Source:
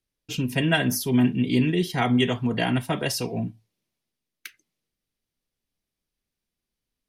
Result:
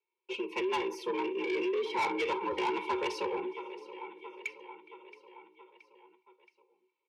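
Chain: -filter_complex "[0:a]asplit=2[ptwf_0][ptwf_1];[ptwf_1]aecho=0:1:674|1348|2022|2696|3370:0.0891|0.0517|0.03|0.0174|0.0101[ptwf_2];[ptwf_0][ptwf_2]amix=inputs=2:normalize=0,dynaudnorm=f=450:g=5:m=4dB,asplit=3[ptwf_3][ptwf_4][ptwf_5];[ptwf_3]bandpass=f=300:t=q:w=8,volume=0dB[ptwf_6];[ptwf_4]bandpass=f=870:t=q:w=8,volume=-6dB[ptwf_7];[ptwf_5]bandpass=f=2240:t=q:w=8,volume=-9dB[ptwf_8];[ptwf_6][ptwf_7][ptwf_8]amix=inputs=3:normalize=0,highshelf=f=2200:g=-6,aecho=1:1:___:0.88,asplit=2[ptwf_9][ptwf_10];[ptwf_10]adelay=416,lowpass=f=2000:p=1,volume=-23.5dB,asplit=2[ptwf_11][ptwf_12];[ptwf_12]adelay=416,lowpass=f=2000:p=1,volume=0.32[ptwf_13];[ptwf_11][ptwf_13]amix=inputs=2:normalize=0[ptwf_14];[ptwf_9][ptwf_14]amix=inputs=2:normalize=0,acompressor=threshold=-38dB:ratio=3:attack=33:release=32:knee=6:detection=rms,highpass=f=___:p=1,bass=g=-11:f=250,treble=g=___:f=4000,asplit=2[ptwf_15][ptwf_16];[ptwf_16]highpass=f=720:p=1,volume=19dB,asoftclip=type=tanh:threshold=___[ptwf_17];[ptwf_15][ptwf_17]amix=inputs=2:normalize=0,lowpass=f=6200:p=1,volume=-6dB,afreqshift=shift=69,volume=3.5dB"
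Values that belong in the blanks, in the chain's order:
2.3, 92, -4, -26.5dB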